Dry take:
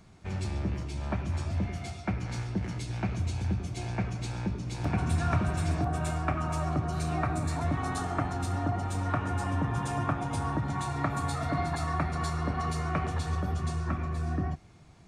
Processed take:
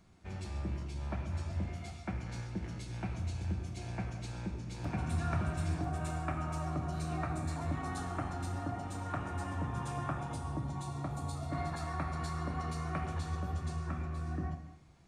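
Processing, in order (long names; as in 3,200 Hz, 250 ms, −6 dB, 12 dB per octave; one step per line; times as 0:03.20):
0:10.32–0:11.51: parametric band 1,700 Hz −8 dB → −14 dB 1.2 octaves
reverb whose tail is shaped and stops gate 350 ms falling, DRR 5.5 dB
level −8 dB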